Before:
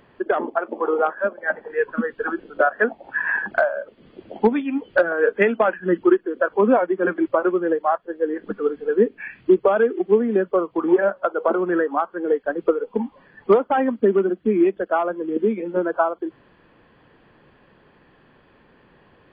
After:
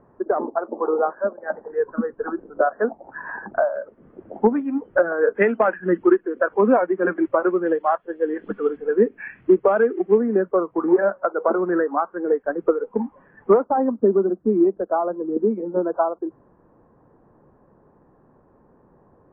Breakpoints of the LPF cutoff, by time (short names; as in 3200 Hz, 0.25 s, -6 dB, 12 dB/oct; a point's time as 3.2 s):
LPF 24 dB/oct
1200 Hz
from 3.76 s 1500 Hz
from 5.35 s 2200 Hz
from 7.66 s 3100 Hz
from 8.77 s 2200 Hz
from 10.18 s 1700 Hz
from 13.64 s 1100 Hz